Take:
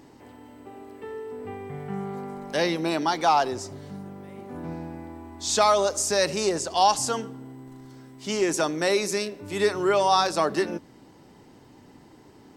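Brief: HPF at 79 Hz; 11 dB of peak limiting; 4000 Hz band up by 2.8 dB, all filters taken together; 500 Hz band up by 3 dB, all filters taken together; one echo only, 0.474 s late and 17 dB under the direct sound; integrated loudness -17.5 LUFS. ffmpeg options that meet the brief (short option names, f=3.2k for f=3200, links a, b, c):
-af "highpass=79,equalizer=f=500:t=o:g=4,equalizer=f=4k:t=o:g=3.5,alimiter=limit=-16.5dB:level=0:latency=1,aecho=1:1:474:0.141,volume=10.5dB"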